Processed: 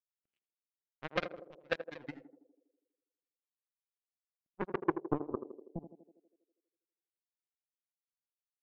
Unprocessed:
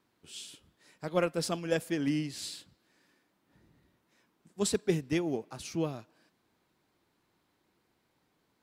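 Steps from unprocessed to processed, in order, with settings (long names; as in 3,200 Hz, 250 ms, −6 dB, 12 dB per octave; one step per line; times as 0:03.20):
pitch shifter gated in a rhythm −2 semitones, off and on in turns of 65 ms
high-pass filter 52 Hz
high-shelf EQ 3,100 Hz +4 dB
transient designer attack +12 dB, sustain −8 dB
in parallel at −2 dB: brickwall limiter −28.5 dBFS, peak gain reduction 26.5 dB
on the sum: soft clipping −13.5 dBFS, distortion −11 dB
low-pass filter sweep 1,900 Hz → 210 Hz, 0:04.39–0:05.71
power curve on the samples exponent 3
on a send: feedback echo with a band-pass in the loop 81 ms, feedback 68%, band-pass 420 Hz, level −8.5 dB
on the sum: one half of a high-frequency compander decoder only
level −3.5 dB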